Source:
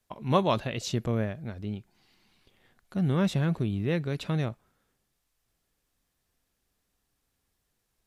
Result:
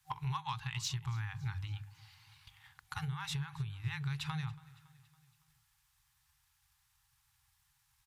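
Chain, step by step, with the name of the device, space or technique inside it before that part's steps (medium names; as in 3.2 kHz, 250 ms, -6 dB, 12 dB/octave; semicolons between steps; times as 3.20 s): FFT band-reject 160–770 Hz; high-pass 44 Hz; drum-bus smash (transient shaper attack +6 dB, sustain 0 dB; compression 20:1, threshold -37 dBFS, peak gain reduction 19 dB; saturation -31 dBFS, distortion -23 dB); hum notches 50/100/150/200/250/300/350/400/450 Hz; feedback delay 280 ms, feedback 54%, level -22 dB; trim +4.5 dB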